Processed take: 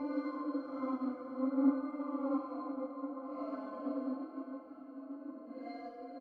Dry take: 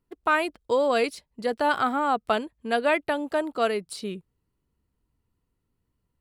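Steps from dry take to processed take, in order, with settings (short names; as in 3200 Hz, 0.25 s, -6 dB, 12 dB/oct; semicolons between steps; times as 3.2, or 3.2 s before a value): reverb RT60 2.5 s, pre-delay 4 ms, DRR 6 dB; soft clip -19 dBFS, distortion -14 dB; bell 2700 Hz -8 dB 1 oct; notches 60/120/180/240/300 Hz; comb 5.9 ms, depth 51%; feedback echo 79 ms, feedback 57%, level -8.5 dB; Paulstretch 5.4×, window 0.10 s, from 1.67; resonant low shelf 200 Hz -12 dB, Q 3; octave resonator C, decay 0.13 s; upward expander 1.5:1, over -42 dBFS; gain +1.5 dB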